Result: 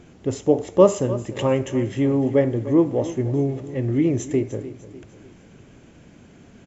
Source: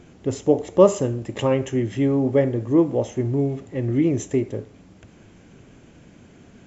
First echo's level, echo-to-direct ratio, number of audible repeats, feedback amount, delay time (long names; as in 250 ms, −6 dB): −15.0 dB, −14.0 dB, 3, 45%, 299 ms